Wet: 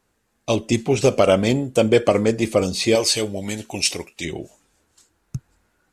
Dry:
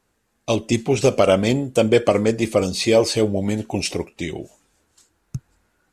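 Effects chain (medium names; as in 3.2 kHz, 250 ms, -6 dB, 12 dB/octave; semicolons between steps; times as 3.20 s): 2.95–4.25 s: tilt shelf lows -7 dB, about 1.5 kHz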